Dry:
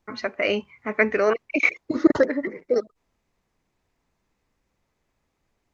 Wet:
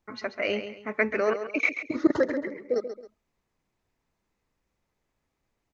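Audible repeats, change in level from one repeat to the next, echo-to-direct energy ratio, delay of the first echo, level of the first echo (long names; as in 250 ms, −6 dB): 2, −10.0 dB, −9.5 dB, 135 ms, −10.0 dB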